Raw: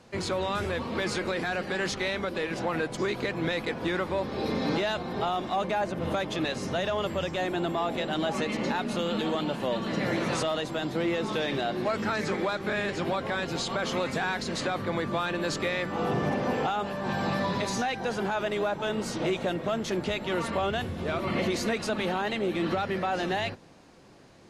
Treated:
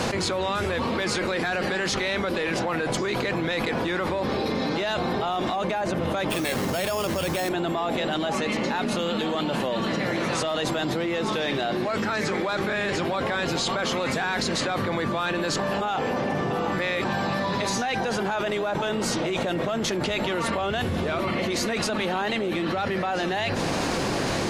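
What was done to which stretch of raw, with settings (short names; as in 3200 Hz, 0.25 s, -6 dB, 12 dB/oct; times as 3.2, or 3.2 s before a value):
6.3–7.49 sample-rate reducer 6000 Hz
15.59–17.05 reverse
whole clip: low shelf 440 Hz -3 dB; fast leveller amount 100%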